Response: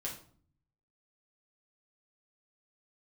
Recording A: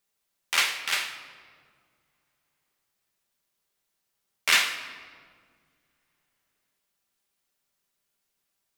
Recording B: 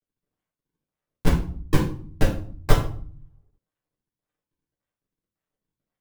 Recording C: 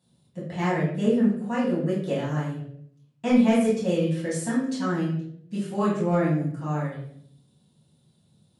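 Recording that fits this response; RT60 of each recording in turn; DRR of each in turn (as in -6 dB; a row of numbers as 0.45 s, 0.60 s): B; 2.0 s, 0.50 s, 0.65 s; 5.0 dB, -4.0 dB, -9.0 dB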